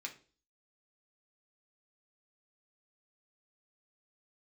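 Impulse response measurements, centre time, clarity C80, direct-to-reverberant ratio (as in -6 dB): 10 ms, 18.5 dB, 1.0 dB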